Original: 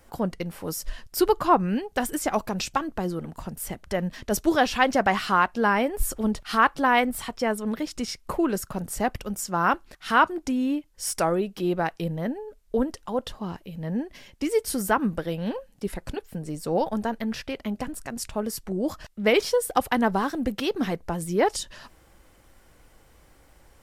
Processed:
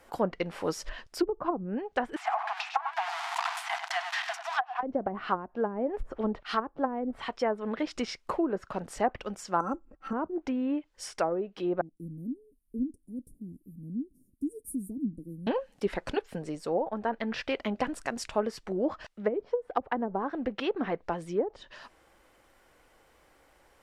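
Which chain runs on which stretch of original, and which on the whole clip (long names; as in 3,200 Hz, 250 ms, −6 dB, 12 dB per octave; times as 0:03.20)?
0:02.16–0:04.83: converter with a step at zero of −22.5 dBFS + linear-phase brick-wall high-pass 660 Hz + single-tap delay 98 ms −9.5 dB
0:09.60–0:10.13: comb filter 3.7 ms, depth 76% + hollow resonant body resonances 1,300/2,600 Hz, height 12 dB, ringing for 25 ms + bad sample-rate conversion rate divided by 6×, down filtered, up zero stuff
0:11.81–0:15.47: Chebyshev band-stop filter 280–9,500 Hz, order 4 + bass and treble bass −6 dB, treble −3 dB
whole clip: treble cut that deepens with the level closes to 300 Hz, closed at −16.5 dBFS; bass and treble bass −12 dB, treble −6 dB; speech leveller within 5 dB 0.5 s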